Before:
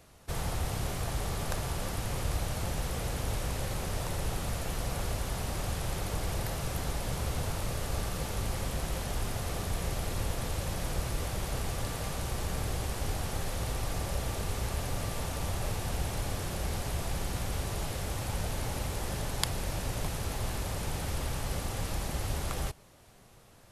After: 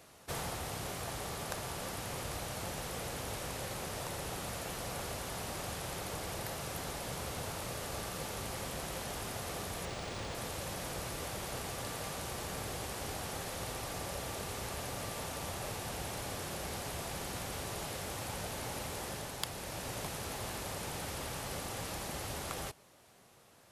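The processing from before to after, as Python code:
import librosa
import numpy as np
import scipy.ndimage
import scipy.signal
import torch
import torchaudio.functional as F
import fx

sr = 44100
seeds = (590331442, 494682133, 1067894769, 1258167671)

y = fx.highpass(x, sr, hz=240.0, slope=6)
y = fx.rider(y, sr, range_db=10, speed_s=0.5)
y = np.clip(y, -10.0 ** (-15.0 / 20.0), 10.0 ** (-15.0 / 20.0))
y = fx.resample_linear(y, sr, factor=3, at=(9.85, 10.35))
y = y * librosa.db_to_amplitude(-2.0)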